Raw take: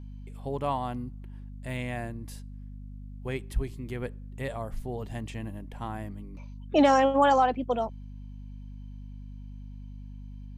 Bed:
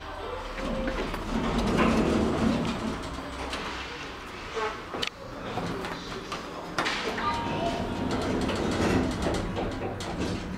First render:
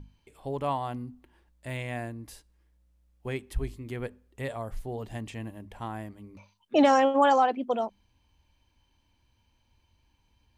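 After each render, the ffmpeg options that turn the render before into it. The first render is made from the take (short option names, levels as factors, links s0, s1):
-af "bandreject=f=50:t=h:w=6,bandreject=f=100:t=h:w=6,bandreject=f=150:t=h:w=6,bandreject=f=200:t=h:w=6,bandreject=f=250:t=h:w=6"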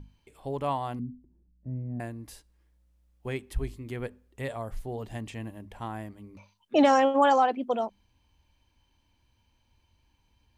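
-filter_complex "[0:a]asettb=1/sr,asplit=3[s0][s1][s2];[s0]atrim=end=0.994[s3];[s1]atrim=start=0.99:end=2,asetpts=PTS-STARTPTS,afade=t=in:d=0.004:c=qsin,afade=t=out:st=1.006:d=0.004:c=qsin,lowpass=f=220:t=q:w=1.9[s4];[s2]atrim=start=1.996[s5];[s3][s4]acrossfade=d=0.004:c1=hsin:c2=qsin[s6];[s6][s5]acrossfade=d=0.004:c1=qsin:c2=hsin"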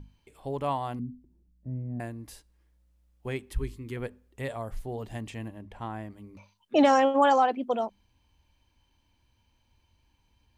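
-filter_complex "[0:a]asettb=1/sr,asplit=3[s0][s1][s2];[s0]atrim=end=3.534[s3];[s1]atrim=start=3.53:end=3.97,asetpts=PTS-STARTPTS,afade=t=in:d=0.004:c=qsin,afade=t=out:st=0.436:d=0.004:c=qsin,asuperstop=centerf=680:order=4:qfactor=2.1[s4];[s2]atrim=start=3.966[s5];[s3][s4]acrossfade=d=0.004:c1=hsin:c2=qsin[s6];[s6][s5]acrossfade=d=0.004:c1=qsin:c2=hsin,asettb=1/sr,asplit=3[s7][s8][s9];[s7]atrim=end=5.484[s10];[s8]atrim=start=5.48:end=6.1,asetpts=PTS-STARTPTS,afade=t=in:d=0.004:c=qsin,afade=t=out:st=0.616:d=0.004:c=qsin,highshelf=f=6900:g=-11.5[s11];[s9]atrim=start=6.096[s12];[s10][s11]acrossfade=d=0.004:c1=hsin:c2=qsin[s13];[s13][s12]acrossfade=d=0.004:c1=qsin:c2=hsin"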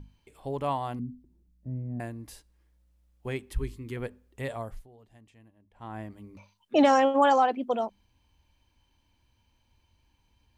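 -filter_complex "[0:a]asplit=3[s0][s1][s2];[s0]atrim=end=4.88,asetpts=PTS-STARTPTS,afade=t=out:st=4.61:d=0.27:silence=0.105925[s3];[s1]atrim=start=4.88:end=5.73,asetpts=PTS-STARTPTS,volume=0.106[s4];[s2]atrim=start=5.73,asetpts=PTS-STARTPTS,afade=t=in:d=0.27:silence=0.105925[s5];[s3][s4][s5]concat=n=3:v=0:a=1"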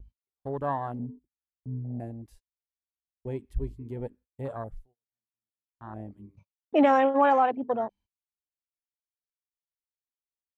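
-af "afwtdn=0.0158,agate=range=0.0251:threshold=0.002:ratio=16:detection=peak"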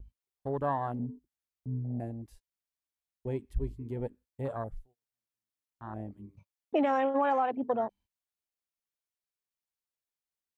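-af "acompressor=threshold=0.0631:ratio=6"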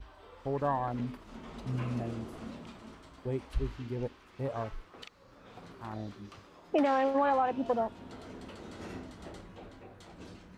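-filter_complex "[1:a]volume=0.119[s0];[0:a][s0]amix=inputs=2:normalize=0"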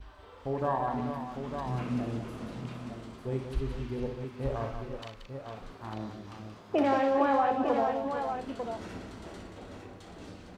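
-filter_complex "[0:a]asplit=2[s0][s1];[s1]adelay=37,volume=0.251[s2];[s0][s2]amix=inputs=2:normalize=0,aecho=1:1:61|179|429|457|899:0.398|0.422|0.15|0.299|0.447"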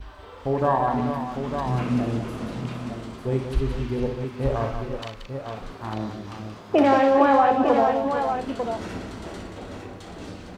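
-af "volume=2.66"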